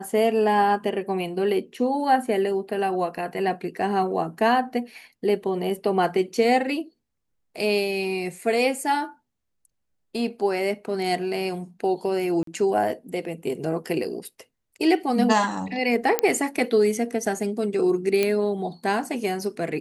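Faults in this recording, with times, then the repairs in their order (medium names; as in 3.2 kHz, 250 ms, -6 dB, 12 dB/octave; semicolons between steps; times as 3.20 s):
12.43–12.47 s: dropout 43 ms
16.19 s: pop -4 dBFS
18.23 s: pop -9 dBFS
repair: de-click; interpolate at 12.43 s, 43 ms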